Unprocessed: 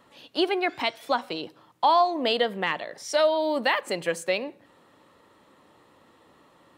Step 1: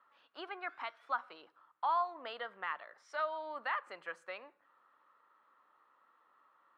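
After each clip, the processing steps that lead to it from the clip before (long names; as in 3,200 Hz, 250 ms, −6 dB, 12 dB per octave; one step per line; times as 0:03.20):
resonant band-pass 1,300 Hz, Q 3.9
level −3 dB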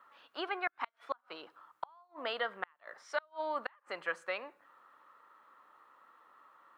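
gate with flip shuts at −28 dBFS, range −36 dB
level +7.5 dB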